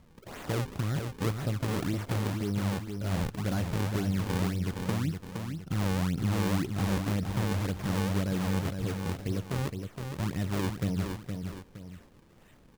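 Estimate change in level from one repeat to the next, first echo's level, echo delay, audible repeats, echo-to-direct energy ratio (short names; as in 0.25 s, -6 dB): -8.0 dB, -6.0 dB, 0.466 s, 2, -5.5 dB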